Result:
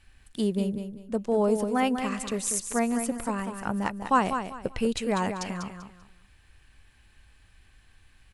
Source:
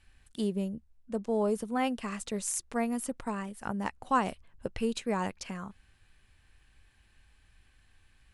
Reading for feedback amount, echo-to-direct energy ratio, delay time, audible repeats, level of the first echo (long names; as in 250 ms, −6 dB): 27%, −7.5 dB, 195 ms, 3, −8.0 dB